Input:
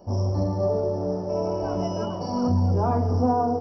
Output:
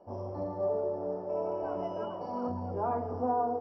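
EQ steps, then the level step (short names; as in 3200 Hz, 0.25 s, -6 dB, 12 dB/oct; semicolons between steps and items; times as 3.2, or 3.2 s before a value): air absorption 230 m; tone controls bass -15 dB, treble -11 dB; -4.5 dB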